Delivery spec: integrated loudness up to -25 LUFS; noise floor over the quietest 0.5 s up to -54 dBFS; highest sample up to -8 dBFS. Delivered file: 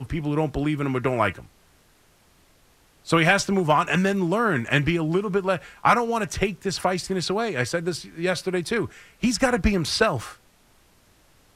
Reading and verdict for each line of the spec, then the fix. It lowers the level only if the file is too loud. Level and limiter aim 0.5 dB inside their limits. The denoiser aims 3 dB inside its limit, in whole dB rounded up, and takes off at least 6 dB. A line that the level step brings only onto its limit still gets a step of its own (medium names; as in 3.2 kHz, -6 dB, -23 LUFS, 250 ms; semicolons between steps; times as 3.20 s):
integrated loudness -23.5 LUFS: fail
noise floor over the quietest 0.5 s -59 dBFS: pass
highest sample -5.0 dBFS: fail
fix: trim -2 dB; peak limiter -8.5 dBFS